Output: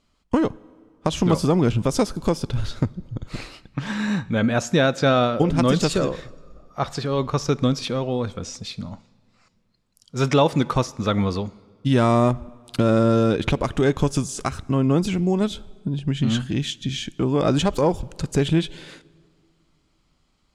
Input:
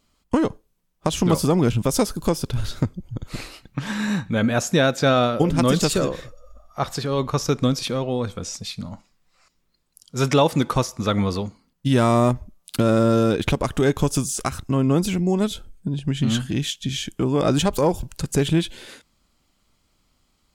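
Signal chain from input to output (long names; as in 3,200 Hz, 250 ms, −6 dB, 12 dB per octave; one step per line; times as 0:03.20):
high-frequency loss of the air 56 metres
on a send: convolution reverb RT60 2.2 s, pre-delay 42 ms, DRR 24 dB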